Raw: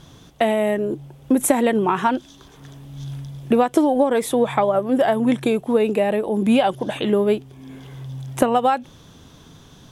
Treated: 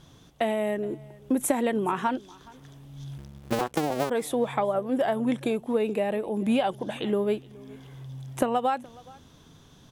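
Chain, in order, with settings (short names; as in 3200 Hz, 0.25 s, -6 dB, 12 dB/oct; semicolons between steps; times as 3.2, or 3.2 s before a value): 3.18–4.1 cycle switcher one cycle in 2, muted; echo 0.421 s -23.5 dB; gain -7.5 dB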